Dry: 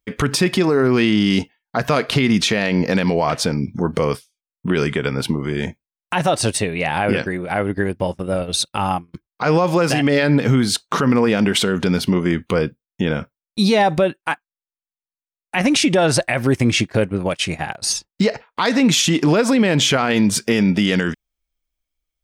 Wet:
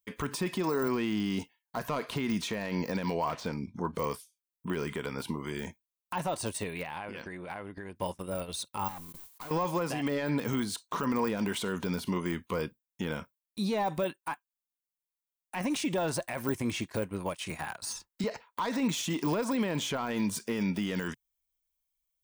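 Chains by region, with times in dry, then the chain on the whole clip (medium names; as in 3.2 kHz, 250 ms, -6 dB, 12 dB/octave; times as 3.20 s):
3.17–3.95 s: median filter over 5 samples + distance through air 73 m
6.83–7.96 s: distance through air 82 m + compression 12:1, threshold -23 dBFS
8.88–9.51 s: valve stage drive 29 dB, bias 0.75 + modulation noise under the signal 15 dB + decay stretcher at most 31 dB/s
17.50–18.24 s: peaking EQ 1.4 kHz +6.5 dB 0.74 oct + three bands compressed up and down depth 40%
whole clip: graphic EQ with 31 bands 125 Hz -7 dB, 1 kHz +10 dB, 5 kHz -3 dB; de-esser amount 95%; pre-emphasis filter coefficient 0.8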